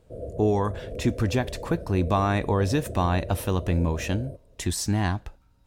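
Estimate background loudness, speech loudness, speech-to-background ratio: -38.0 LUFS, -26.5 LUFS, 11.5 dB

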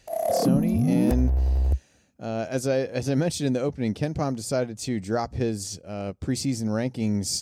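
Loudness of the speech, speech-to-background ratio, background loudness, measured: -27.5 LUFS, -3.5 dB, -24.0 LUFS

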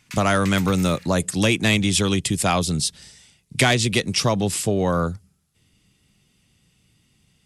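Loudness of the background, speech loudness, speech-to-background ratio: -39.0 LUFS, -20.5 LUFS, 18.5 dB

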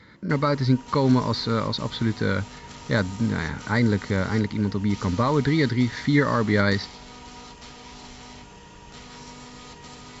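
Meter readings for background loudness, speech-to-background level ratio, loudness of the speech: -42.0 LUFS, 18.5 dB, -23.5 LUFS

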